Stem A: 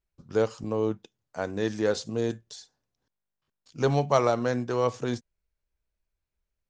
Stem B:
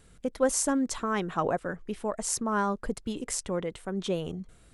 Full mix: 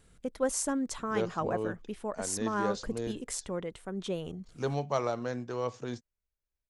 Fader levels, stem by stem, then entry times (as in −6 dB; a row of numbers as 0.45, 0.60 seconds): −8.0, −4.5 decibels; 0.80, 0.00 seconds